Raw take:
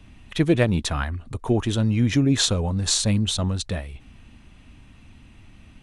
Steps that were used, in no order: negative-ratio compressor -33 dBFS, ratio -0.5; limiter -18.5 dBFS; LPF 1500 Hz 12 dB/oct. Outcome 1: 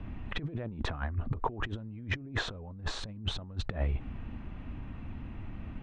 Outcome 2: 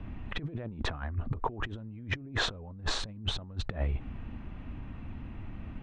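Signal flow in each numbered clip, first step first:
limiter > LPF > negative-ratio compressor; LPF > limiter > negative-ratio compressor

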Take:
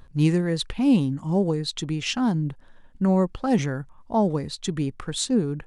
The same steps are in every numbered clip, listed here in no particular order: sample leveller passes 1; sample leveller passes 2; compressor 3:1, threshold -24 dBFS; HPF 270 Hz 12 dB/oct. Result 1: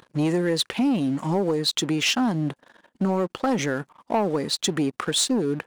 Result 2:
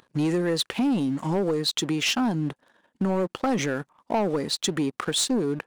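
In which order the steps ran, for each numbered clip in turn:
second sample leveller > HPF > compressor > first sample leveller; first sample leveller > HPF > second sample leveller > compressor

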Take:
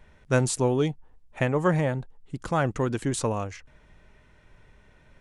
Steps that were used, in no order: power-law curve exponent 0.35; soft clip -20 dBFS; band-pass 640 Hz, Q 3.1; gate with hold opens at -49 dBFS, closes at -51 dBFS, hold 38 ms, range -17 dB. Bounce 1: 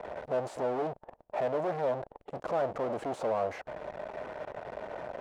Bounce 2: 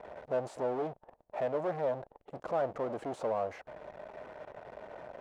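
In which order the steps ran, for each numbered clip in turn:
power-law curve > soft clip > band-pass > gate with hold; soft clip > power-law curve > gate with hold > band-pass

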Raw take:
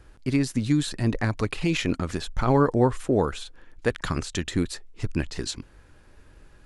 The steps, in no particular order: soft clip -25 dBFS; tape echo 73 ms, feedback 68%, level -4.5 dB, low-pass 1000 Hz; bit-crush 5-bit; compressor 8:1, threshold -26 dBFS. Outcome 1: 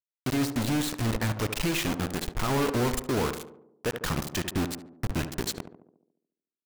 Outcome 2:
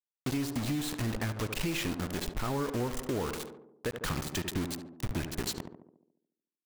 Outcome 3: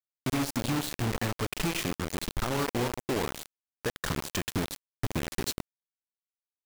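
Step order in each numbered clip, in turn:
soft clip > compressor > bit-crush > tape echo; bit-crush > tape echo > compressor > soft clip; compressor > tape echo > soft clip > bit-crush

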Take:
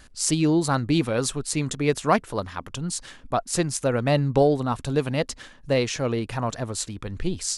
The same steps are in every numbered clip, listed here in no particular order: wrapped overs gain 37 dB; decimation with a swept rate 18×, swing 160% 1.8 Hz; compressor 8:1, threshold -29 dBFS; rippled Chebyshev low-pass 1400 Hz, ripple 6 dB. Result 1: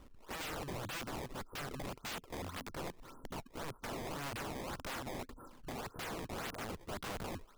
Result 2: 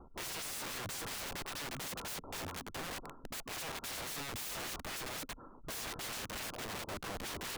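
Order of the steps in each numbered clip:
rippled Chebyshev low-pass > decimation with a swept rate > compressor > wrapped overs; decimation with a swept rate > rippled Chebyshev low-pass > wrapped overs > compressor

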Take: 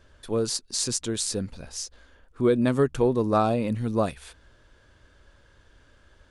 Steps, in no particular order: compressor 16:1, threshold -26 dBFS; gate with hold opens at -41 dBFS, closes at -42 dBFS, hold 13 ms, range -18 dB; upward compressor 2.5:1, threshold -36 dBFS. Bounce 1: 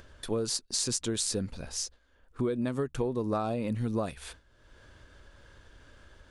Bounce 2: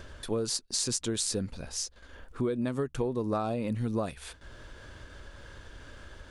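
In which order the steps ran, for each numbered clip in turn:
compressor > gate with hold > upward compressor; compressor > upward compressor > gate with hold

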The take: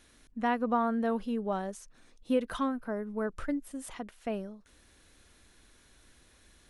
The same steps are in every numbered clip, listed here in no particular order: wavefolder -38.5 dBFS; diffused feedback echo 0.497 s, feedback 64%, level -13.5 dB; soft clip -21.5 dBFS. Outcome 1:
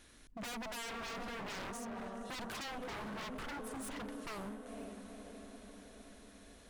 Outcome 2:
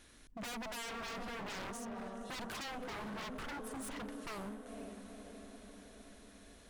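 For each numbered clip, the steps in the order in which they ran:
diffused feedback echo > soft clip > wavefolder; soft clip > diffused feedback echo > wavefolder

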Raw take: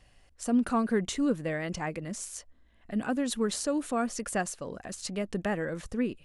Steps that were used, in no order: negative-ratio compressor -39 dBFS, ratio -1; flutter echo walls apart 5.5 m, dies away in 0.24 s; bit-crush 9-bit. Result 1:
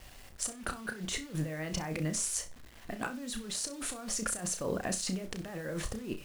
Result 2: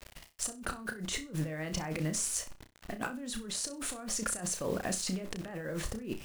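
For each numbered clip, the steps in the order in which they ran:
negative-ratio compressor > bit-crush > flutter echo; bit-crush > negative-ratio compressor > flutter echo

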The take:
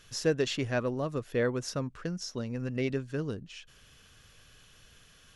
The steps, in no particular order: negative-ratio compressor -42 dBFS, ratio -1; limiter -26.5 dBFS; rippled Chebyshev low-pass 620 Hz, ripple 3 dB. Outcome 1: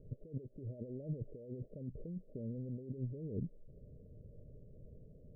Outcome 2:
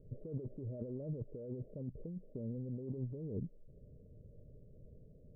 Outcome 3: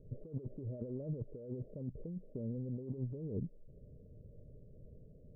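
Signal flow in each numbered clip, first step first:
negative-ratio compressor > rippled Chebyshev low-pass > limiter; rippled Chebyshev low-pass > limiter > negative-ratio compressor; rippled Chebyshev low-pass > negative-ratio compressor > limiter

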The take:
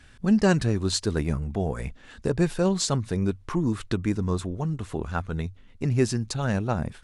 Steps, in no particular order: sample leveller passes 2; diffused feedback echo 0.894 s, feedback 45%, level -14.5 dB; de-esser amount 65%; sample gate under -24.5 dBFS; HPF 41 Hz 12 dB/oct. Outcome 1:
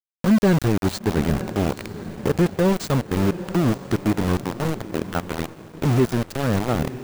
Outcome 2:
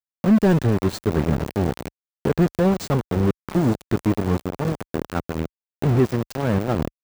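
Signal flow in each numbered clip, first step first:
HPF > sample gate > de-esser > diffused feedback echo > sample leveller; diffused feedback echo > sample gate > HPF > sample leveller > de-esser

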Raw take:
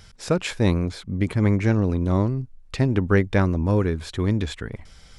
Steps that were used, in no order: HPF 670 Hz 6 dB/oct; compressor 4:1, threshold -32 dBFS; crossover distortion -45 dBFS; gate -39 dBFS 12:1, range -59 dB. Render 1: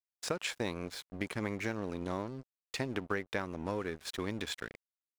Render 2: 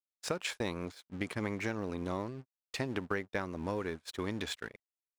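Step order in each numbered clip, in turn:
HPF > gate > crossover distortion > compressor; crossover distortion > HPF > compressor > gate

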